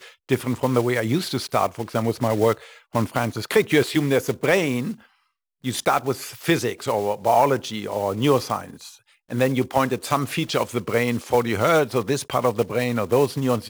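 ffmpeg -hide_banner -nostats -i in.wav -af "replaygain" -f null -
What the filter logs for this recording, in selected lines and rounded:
track_gain = +1.8 dB
track_peak = 0.408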